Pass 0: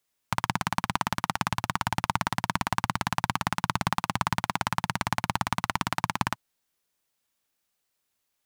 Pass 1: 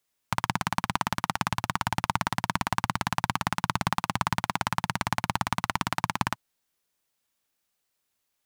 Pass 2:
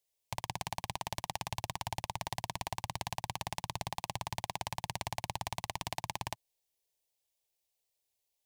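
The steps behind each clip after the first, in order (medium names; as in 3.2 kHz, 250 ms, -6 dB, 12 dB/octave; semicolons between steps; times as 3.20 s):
no audible change
level held to a coarse grid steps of 17 dB; static phaser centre 560 Hz, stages 4; trim +2 dB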